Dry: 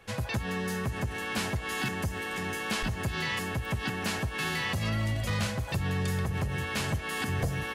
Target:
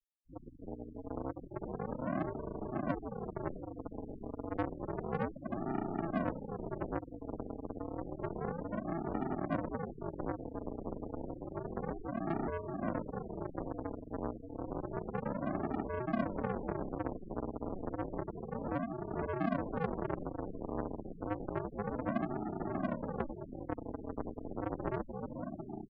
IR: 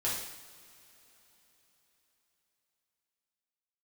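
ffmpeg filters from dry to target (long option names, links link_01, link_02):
-filter_complex "[0:a]bandreject=frequency=60:width_type=h:width=6,bandreject=frequency=120:width_type=h:width=6,bandreject=frequency=180:width_type=h:width=6,bandreject=frequency=240:width_type=h:width=6,bandreject=frequency=300:width_type=h:width=6,dynaudnorm=framelen=100:gausssize=7:maxgain=8dB,adynamicequalizer=threshold=0.00501:dfrequency=150:dqfactor=7.4:tfrequency=150:tqfactor=7.4:attack=5:release=100:ratio=0.375:range=2:mode=cutabove:tftype=bell,lowpass=frequency=3300:width_type=q:width=0.5098,lowpass=frequency=3300:width_type=q:width=0.6013,lowpass=frequency=3300:width_type=q:width=0.9,lowpass=frequency=3300:width_type=q:width=2.563,afreqshift=-3900,acrossover=split=210[link_01][link_02];[link_02]acompressor=threshold=-26dB:ratio=2[link_03];[link_01][link_03]amix=inputs=2:normalize=0,asetrate=13186,aresample=44100,aresample=11025,acrusher=samples=41:mix=1:aa=0.000001:lfo=1:lforange=41:lforate=0.3,aresample=44100,asplit=2[link_04][link_05];[link_05]adelay=671,lowpass=frequency=1300:poles=1,volume=-19dB,asplit=2[link_06][link_07];[link_07]adelay=671,lowpass=frequency=1300:poles=1,volume=0.55,asplit=2[link_08][link_09];[link_09]adelay=671,lowpass=frequency=1300:poles=1,volume=0.55,asplit=2[link_10][link_11];[link_11]adelay=671,lowpass=frequency=1300:poles=1,volume=0.55,asplit=2[link_12][link_13];[link_13]adelay=671,lowpass=frequency=1300:poles=1,volume=0.55[link_14];[link_04][link_06][link_08][link_10][link_12][link_14]amix=inputs=6:normalize=0,afftfilt=real='re*gte(hypot(re,im),0.0282)':imag='im*gte(hypot(re,im),0.0282)':win_size=1024:overlap=0.75,acrossover=split=210 2000:gain=0.1 1 0.0708[link_15][link_16][link_17];[link_15][link_16][link_17]amix=inputs=3:normalize=0,volume=-1.5dB"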